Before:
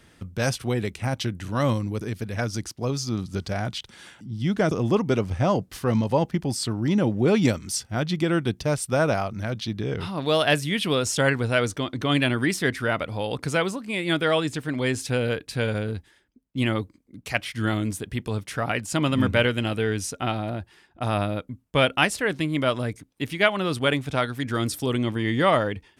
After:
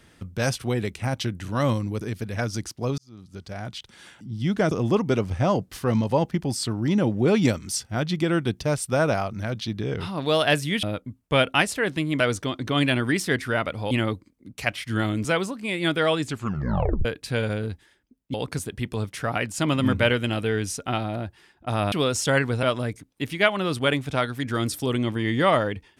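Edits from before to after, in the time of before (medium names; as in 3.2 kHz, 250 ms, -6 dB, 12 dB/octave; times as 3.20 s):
2.98–4.27 s: fade in
10.83–11.54 s: swap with 21.26–22.63 s
13.25–13.50 s: swap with 16.59–17.93 s
14.51 s: tape stop 0.79 s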